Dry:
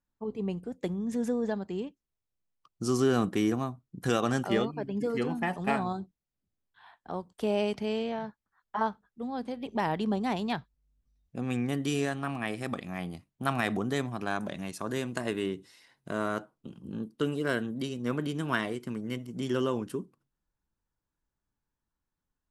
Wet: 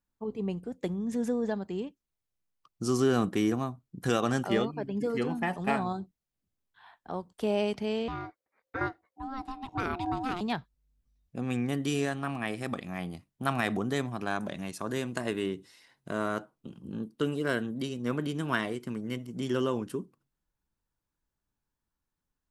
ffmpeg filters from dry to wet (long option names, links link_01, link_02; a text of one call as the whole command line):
ffmpeg -i in.wav -filter_complex "[0:a]asettb=1/sr,asplit=3[link_01][link_02][link_03];[link_01]atrim=end=8.084[link_04];[link_02]atrim=start=8.08:end=10.41,asetpts=PTS-STARTPTS,afade=type=in:duration=0.004:curve=qsin,afade=type=out:start_time=2.326:duration=0.004:curve=qsin,aeval=exprs='val(0)*sin(2*PI*530*n/s)':channel_layout=same[link_05];[link_03]atrim=start=10.406[link_06];[link_04][link_05]acrossfade=duration=0.004:curve1=hsin:curve2=qsin[link_07];[link_07][link_06]acrossfade=duration=0.004:curve1=qsin:curve2=hsin" out.wav